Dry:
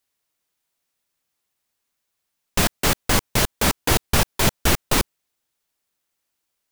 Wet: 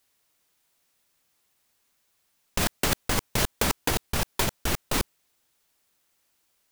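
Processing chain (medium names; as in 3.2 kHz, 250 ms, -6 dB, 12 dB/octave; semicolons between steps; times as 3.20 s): compressor with a negative ratio -24 dBFS, ratio -1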